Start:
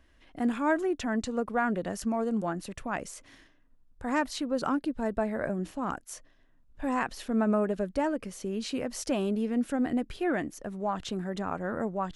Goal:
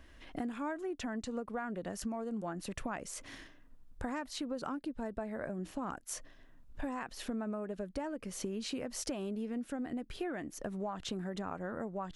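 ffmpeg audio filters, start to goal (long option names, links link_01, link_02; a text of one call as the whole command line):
ffmpeg -i in.wav -af "acompressor=threshold=-41dB:ratio=10,volume=5.5dB" out.wav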